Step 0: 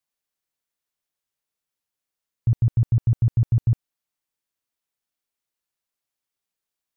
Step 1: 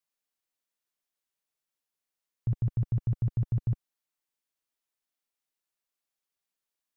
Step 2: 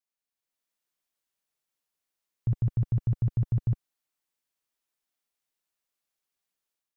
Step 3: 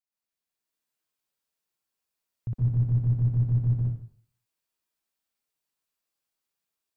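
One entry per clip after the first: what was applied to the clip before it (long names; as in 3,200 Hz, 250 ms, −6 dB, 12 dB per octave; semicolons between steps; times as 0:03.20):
parametric band 79 Hz −8.5 dB 1.6 octaves; level −3 dB
automatic gain control gain up to 8 dB; level −6 dB
dense smooth reverb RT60 0.53 s, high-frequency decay 0.95×, pre-delay 110 ms, DRR −4.5 dB; level −5.5 dB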